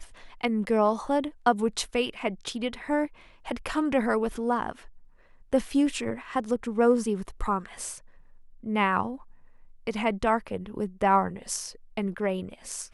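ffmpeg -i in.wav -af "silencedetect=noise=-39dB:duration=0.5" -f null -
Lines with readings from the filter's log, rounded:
silence_start: 4.86
silence_end: 5.53 | silence_duration: 0.67
silence_start: 7.98
silence_end: 8.64 | silence_duration: 0.65
silence_start: 9.22
silence_end: 9.87 | silence_duration: 0.65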